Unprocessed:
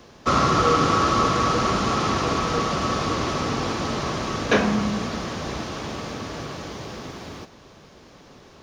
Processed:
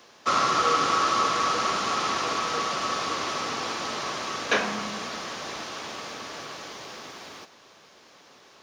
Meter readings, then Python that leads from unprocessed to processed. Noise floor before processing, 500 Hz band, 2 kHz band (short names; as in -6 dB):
-49 dBFS, -7.0 dB, -1.0 dB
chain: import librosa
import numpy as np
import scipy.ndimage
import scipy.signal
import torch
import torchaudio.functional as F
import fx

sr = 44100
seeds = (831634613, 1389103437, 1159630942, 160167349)

y = fx.highpass(x, sr, hz=970.0, slope=6)